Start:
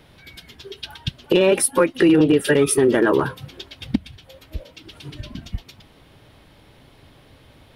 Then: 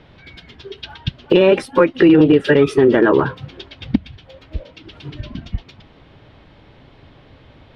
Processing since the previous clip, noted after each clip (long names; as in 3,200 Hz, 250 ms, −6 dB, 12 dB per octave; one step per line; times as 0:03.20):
high-frequency loss of the air 180 metres
level +4.5 dB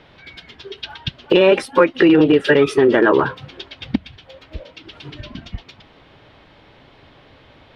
low-shelf EQ 310 Hz −9 dB
level +2.5 dB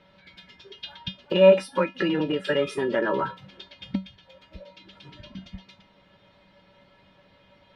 tuned comb filter 190 Hz, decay 0.2 s, harmonics odd, mix 90%
level +3 dB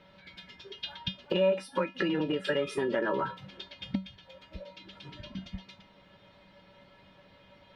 downward compressor 2.5 to 1, threshold −28 dBFS, peak gain reduction 12 dB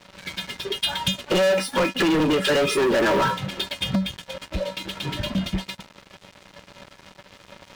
leveller curve on the samples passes 5